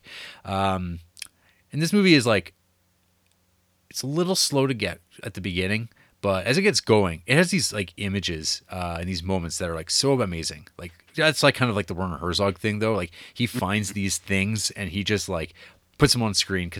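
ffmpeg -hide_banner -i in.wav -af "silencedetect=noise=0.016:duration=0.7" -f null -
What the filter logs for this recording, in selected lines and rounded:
silence_start: 2.48
silence_end: 3.91 | silence_duration: 1.42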